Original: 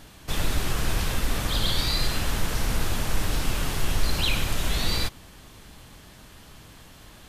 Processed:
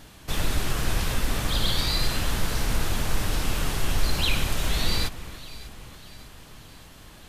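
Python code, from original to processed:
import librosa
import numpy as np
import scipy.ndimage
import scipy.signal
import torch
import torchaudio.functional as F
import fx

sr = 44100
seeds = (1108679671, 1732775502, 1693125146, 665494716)

y = fx.vibrato(x, sr, rate_hz=7.4, depth_cents=13.0)
y = fx.echo_alternate(y, sr, ms=299, hz=2100.0, feedback_pct=69, wet_db=-13.5)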